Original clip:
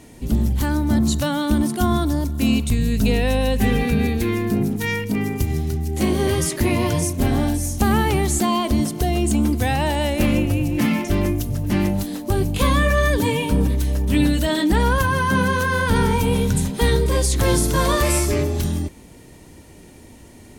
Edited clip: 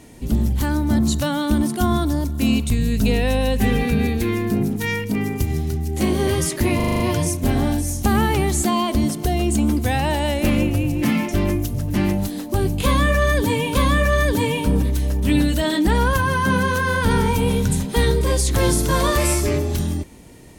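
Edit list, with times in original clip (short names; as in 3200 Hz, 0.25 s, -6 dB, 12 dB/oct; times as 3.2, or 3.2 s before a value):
6.76 stutter 0.04 s, 7 plays
12.6–13.51 loop, 2 plays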